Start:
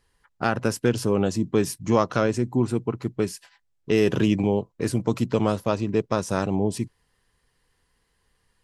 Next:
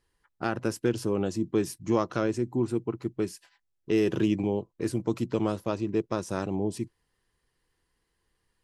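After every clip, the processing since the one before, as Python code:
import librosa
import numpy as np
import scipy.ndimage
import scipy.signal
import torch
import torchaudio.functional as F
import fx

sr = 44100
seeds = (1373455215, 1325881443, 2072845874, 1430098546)

y = fx.peak_eq(x, sr, hz=340.0, db=8.0, octaves=0.28)
y = F.gain(torch.from_numpy(y), -7.0).numpy()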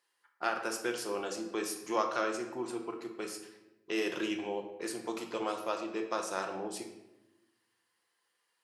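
y = scipy.signal.sosfilt(scipy.signal.butter(2, 680.0, 'highpass', fs=sr, output='sos'), x)
y = fx.room_shoebox(y, sr, seeds[0], volume_m3=390.0, walls='mixed', distance_m=0.86)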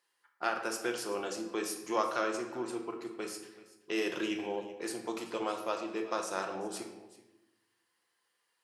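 y = x + 10.0 ** (-18.5 / 20.0) * np.pad(x, (int(381 * sr / 1000.0), 0))[:len(x)]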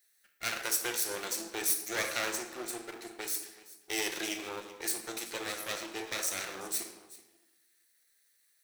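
y = fx.lower_of_two(x, sr, delay_ms=0.51)
y = fx.riaa(y, sr, side='recording')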